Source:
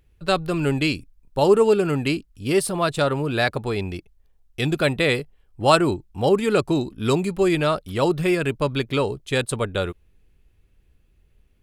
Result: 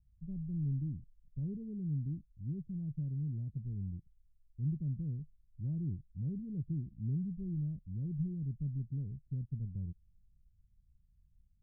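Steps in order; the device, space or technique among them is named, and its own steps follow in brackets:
the neighbour's flat through the wall (low-pass filter 170 Hz 24 dB per octave; parametric band 180 Hz +3 dB)
level −8.5 dB

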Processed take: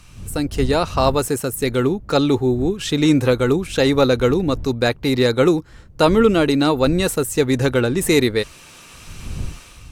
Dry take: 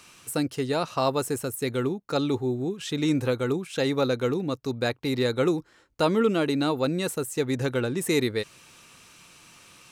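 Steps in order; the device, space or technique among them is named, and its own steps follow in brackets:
smartphone video outdoors (wind on the microphone 85 Hz −40 dBFS; automatic gain control gain up to 10 dB; AAC 96 kbit/s 44,100 Hz)

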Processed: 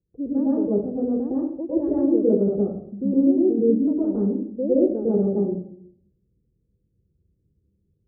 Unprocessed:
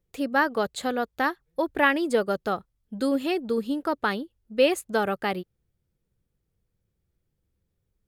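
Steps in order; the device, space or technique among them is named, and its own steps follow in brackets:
high-pass filter 47 Hz
next room (low-pass filter 420 Hz 24 dB per octave; convolution reverb RT60 0.65 s, pre-delay 102 ms, DRR −7.5 dB)

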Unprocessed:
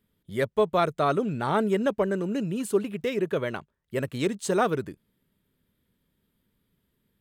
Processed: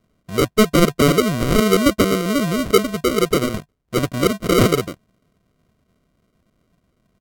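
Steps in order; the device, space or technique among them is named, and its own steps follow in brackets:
crushed at another speed (tape speed factor 1.25×; decimation without filtering 41×; tape speed factor 0.8×)
level +9 dB

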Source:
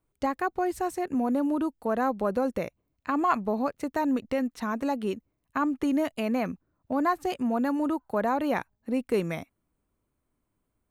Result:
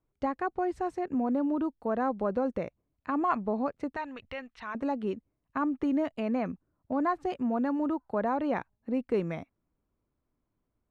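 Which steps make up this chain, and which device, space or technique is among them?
0:03.96–0:04.75: drawn EQ curve 100 Hz 0 dB, 220 Hz −18 dB, 2,900 Hz +8 dB, 6,800 Hz −4 dB
through cloth (low-pass filter 6,400 Hz 12 dB per octave; high-shelf EQ 2,800 Hz −11.5 dB)
level −2 dB

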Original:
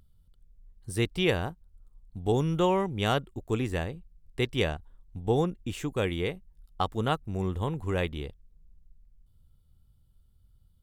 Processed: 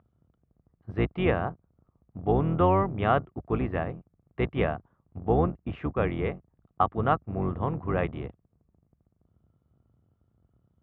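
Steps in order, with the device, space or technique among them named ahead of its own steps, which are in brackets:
sub-octave bass pedal (sub-octave generator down 2 octaves, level +4 dB; loudspeaker in its box 72–2,300 Hz, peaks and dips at 79 Hz −4 dB, 690 Hz +7 dB, 1,200 Hz +8 dB)

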